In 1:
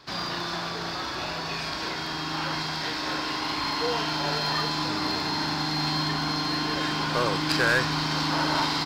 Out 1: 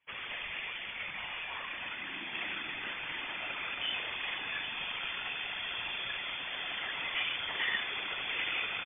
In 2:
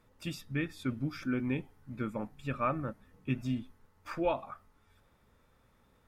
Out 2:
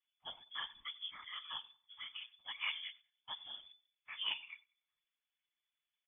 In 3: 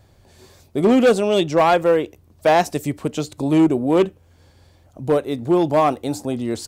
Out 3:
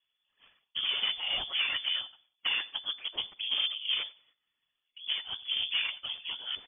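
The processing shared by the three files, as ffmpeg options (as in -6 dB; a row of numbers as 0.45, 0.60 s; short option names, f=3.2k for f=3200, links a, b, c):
-filter_complex "[0:a]agate=range=-17dB:threshold=-47dB:ratio=16:detection=peak,equalizer=f=210:t=o:w=2.1:g=-9.5,aecho=1:1:6.2:0.77,acompressor=threshold=-21dB:ratio=6,afftfilt=real='hypot(re,im)*cos(2*PI*random(0))':imag='hypot(re,im)*sin(2*PI*random(1))':win_size=512:overlap=0.75,aeval=exprs='(tanh(15.8*val(0)+0.7)-tanh(0.7))/15.8':c=same,lowpass=f=3k:t=q:w=0.5098,lowpass=f=3k:t=q:w=0.6013,lowpass=f=3k:t=q:w=0.9,lowpass=f=3k:t=q:w=2.563,afreqshift=-3500,asplit=2[a][b];[b]adelay=95,lowpass=f=2.2k:p=1,volume=-21dB,asplit=2[c][d];[d]adelay=95,lowpass=f=2.2k:p=1,volume=0.36,asplit=2[e][f];[f]adelay=95,lowpass=f=2.2k:p=1,volume=0.36[g];[a][c][e][g]amix=inputs=4:normalize=0,volume=2dB"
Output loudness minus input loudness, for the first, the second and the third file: -8.5, -7.5, -12.5 LU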